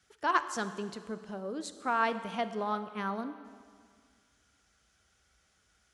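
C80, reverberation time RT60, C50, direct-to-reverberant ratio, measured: 13.0 dB, 1.9 s, 12.0 dB, 11.0 dB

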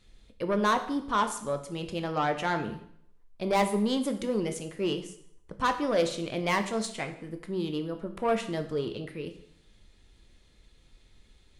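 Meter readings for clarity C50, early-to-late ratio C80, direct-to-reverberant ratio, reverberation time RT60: 11.0 dB, 14.0 dB, 7.0 dB, 0.65 s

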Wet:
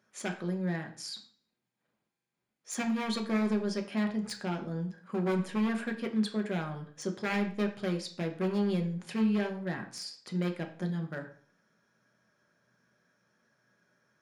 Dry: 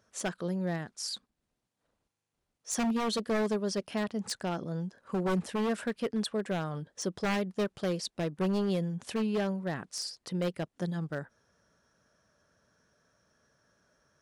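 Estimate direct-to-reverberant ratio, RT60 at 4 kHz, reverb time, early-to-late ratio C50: 3.0 dB, 0.45 s, 0.50 s, 11.0 dB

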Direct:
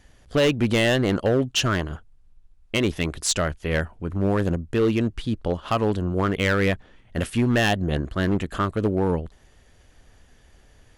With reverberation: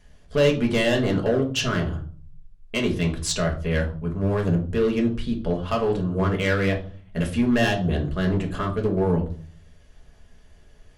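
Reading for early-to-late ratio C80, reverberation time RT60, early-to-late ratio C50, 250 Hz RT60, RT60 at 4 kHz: 16.0 dB, 0.45 s, 11.0 dB, 0.65 s, 0.30 s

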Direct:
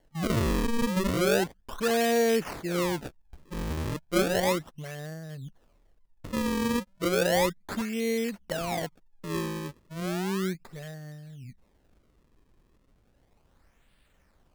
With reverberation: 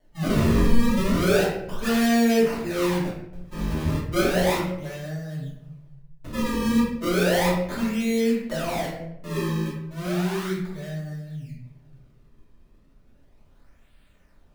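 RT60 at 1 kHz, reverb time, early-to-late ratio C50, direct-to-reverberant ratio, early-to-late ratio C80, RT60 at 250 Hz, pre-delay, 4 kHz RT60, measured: 0.70 s, 0.80 s, 2.5 dB, −8.5 dB, 6.0 dB, 1.1 s, 3 ms, 0.50 s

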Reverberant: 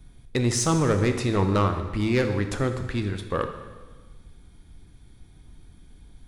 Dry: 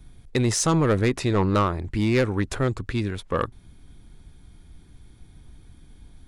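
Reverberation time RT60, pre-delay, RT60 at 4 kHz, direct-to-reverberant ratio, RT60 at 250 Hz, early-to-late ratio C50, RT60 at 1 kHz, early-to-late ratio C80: 1.3 s, 7 ms, 1.3 s, 6.5 dB, 1.4 s, 8.5 dB, 1.3 s, 10.0 dB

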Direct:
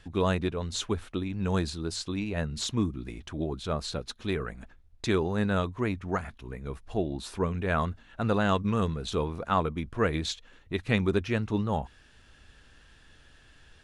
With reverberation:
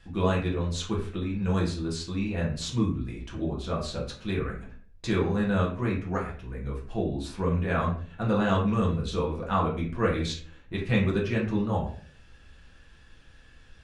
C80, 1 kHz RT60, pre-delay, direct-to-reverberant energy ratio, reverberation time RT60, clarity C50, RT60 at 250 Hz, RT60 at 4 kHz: 11.0 dB, 0.40 s, 4 ms, −4.0 dB, 0.45 s, 7.0 dB, 0.60 s, 0.30 s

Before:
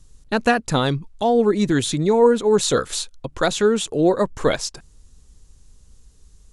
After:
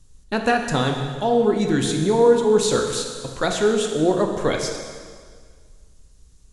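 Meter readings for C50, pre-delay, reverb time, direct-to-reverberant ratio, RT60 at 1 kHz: 4.5 dB, 6 ms, 1.8 s, 2.5 dB, 1.8 s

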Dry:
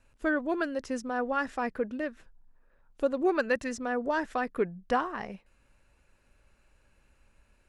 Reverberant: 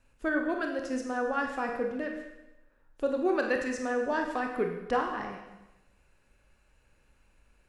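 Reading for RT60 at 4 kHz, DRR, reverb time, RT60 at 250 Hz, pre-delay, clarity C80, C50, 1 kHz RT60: 1.0 s, 2.5 dB, 1.0 s, 0.95 s, 26 ms, 7.0 dB, 5.0 dB, 1.0 s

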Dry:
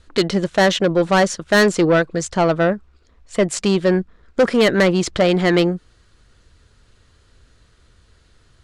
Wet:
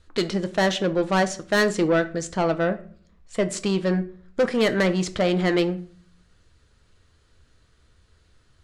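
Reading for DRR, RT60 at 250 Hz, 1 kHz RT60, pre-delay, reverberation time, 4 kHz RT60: 9.0 dB, 0.70 s, 0.45 s, 6 ms, 0.45 s, 0.35 s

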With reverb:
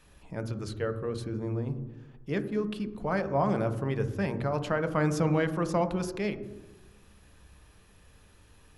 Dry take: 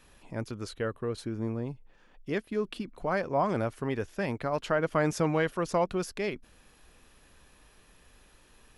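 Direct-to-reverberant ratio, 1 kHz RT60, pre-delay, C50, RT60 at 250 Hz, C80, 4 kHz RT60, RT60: 9.0 dB, 1.0 s, 3 ms, 12.5 dB, 1.3 s, 14.5 dB, 0.75 s, 1.1 s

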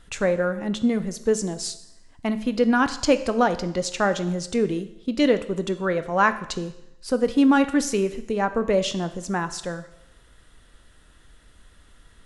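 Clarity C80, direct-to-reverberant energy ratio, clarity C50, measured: 16.0 dB, 10.5 dB, 14.0 dB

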